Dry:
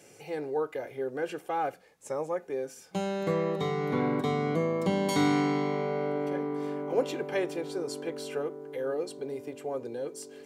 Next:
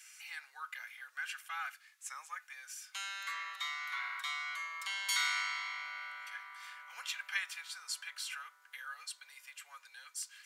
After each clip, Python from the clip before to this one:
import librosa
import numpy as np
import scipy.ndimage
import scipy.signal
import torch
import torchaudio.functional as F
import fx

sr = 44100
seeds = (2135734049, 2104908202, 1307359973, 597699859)

y = scipy.signal.sosfilt(scipy.signal.butter(6, 1300.0, 'highpass', fs=sr, output='sos'), x)
y = y * librosa.db_to_amplitude(3.0)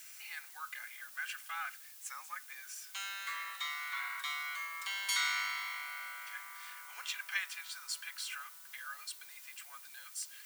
y = fx.dmg_noise_colour(x, sr, seeds[0], colour='blue', level_db=-54.0)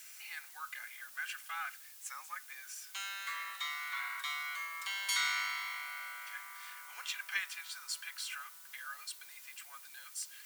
y = fx.cheby_harmonics(x, sr, harmonics=(2,), levels_db=(-27,), full_scale_db=-20.5)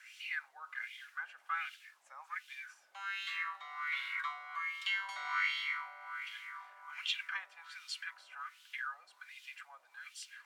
y = fx.wah_lfo(x, sr, hz=1.3, low_hz=630.0, high_hz=3200.0, q=3.7)
y = y * librosa.db_to_amplitude(9.0)